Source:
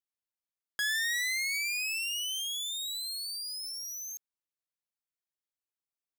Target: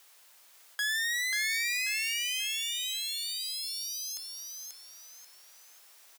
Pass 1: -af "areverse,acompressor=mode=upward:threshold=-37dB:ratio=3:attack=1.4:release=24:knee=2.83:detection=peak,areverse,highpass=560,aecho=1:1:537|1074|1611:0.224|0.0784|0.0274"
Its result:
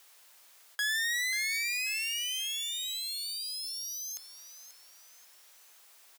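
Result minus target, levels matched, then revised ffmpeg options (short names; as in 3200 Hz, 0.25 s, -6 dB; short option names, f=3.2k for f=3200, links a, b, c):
echo-to-direct -8.5 dB
-af "areverse,acompressor=mode=upward:threshold=-37dB:ratio=3:attack=1.4:release=24:knee=2.83:detection=peak,areverse,highpass=560,aecho=1:1:537|1074|1611|2148:0.596|0.208|0.073|0.0255"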